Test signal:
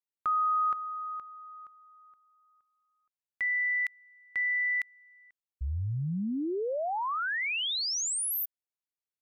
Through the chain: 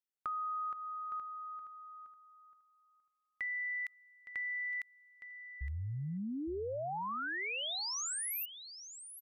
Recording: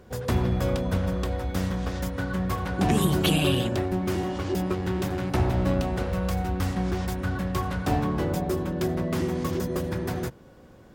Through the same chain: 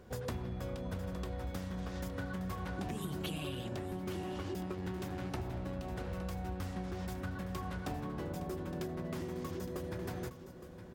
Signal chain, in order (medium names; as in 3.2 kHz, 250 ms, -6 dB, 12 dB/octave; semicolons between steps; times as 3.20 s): compression 10:1, threshold -31 dBFS; on a send: delay 864 ms -12 dB; on the sum: trim -5 dB